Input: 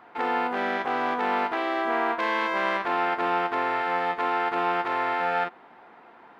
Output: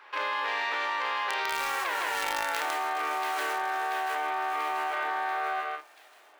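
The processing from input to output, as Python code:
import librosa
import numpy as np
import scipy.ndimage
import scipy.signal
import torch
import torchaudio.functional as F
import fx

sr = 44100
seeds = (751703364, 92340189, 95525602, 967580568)

p1 = fx.doppler_pass(x, sr, speed_mps=54, closest_m=2.7, pass_at_s=1.88)
p2 = scipy.signal.sosfilt(scipy.signal.butter(4, 350.0, 'highpass', fs=sr, output='sos'), p1)
p3 = p2 + fx.echo_single(p2, sr, ms=158, db=-4.0, dry=0)
p4 = fx.tremolo_shape(p3, sr, shape='triangle', hz=0.79, depth_pct=35)
p5 = fx.quant_dither(p4, sr, seeds[0], bits=6, dither='none')
p6 = p4 + (p5 * librosa.db_to_amplitude(-6.5))
p7 = fx.tilt_shelf(p6, sr, db=-6.0, hz=1100.0)
p8 = fx.doubler(p7, sr, ms=29.0, db=-10.5)
p9 = fx.echo_wet_highpass(p8, sr, ms=686, feedback_pct=45, hz=3200.0, wet_db=-21.0)
p10 = fx.env_flatten(p9, sr, amount_pct=100)
y = p10 * librosa.db_to_amplitude(-7.5)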